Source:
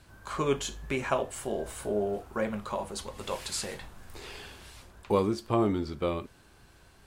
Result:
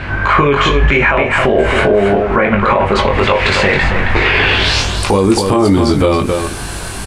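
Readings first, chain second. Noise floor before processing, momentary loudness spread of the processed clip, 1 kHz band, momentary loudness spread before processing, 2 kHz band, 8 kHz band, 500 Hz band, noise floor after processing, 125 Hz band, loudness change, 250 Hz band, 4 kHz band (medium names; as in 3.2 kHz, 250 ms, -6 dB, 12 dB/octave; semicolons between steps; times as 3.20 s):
-58 dBFS, 4 LU, +21.5 dB, 18 LU, +29.0 dB, +13.5 dB, +18.5 dB, -23 dBFS, +22.0 dB, +19.5 dB, +18.5 dB, +23.5 dB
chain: compression 6:1, threshold -39 dBFS, peak gain reduction 17.5 dB; low-pass sweep 2.2 kHz -> 10 kHz, 4.42–5.05 s; doubling 21 ms -5 dB; on a send: delay 271 ms -8.5 dB; on the sum: loudness maximiser +33 dB; trim -1 dB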